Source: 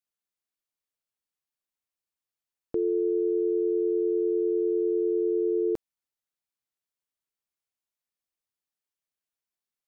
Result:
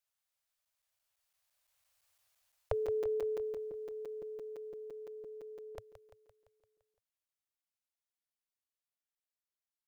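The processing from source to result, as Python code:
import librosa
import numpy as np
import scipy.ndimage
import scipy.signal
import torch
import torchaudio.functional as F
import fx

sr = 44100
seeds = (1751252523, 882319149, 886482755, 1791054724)

p1 = fx.doppler_pass(x, sr, speed_mps=7, closest_m=3.5, pass_at_s=2.14)
p2 = scipy.signal.sosfilt(scipy.signal.ellip(3, 1.0, 40, [110.0, 560.0], 'bandstop', fs=sr, output='sos'), p1)
p3 = p2 + fx.echo_feedback(p2, sr, ms=171, feedback_pct=58, wet_db=-11, dry=0)
p4 = fx.buffer_crackle(p3, sr, first_s=0.65, period_s=0.17, block=256, kind='zero')
y = p4 * 10.0 ** (15.5 / 20.0)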